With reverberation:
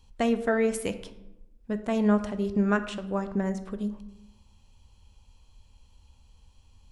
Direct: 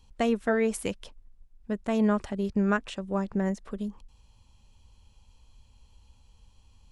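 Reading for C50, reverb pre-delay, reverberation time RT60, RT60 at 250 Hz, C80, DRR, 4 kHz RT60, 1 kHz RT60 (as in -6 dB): 12.5 dB, 11 ms, 0.95 s, 1.1 s, 15.0 dB, 9.5 dB, 0.55 s, 0.85 s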